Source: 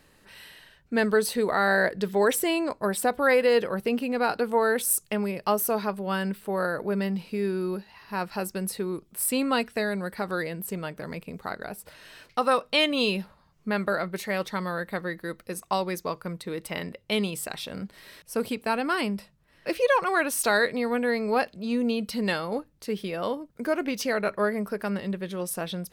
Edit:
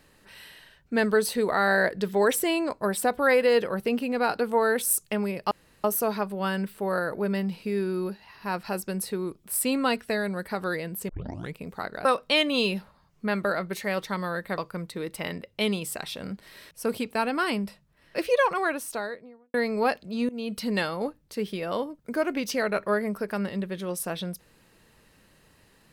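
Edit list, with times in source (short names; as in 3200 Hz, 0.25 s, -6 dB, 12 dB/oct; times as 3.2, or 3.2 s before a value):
5.51 insert room tone 0.33 s
10.76 tape start 0.46 s
11.72–12.48 cut
15.01–16.09 cut
19.85–21.05 studio fade out
21.8–22.08 fade in, from -22.5 dB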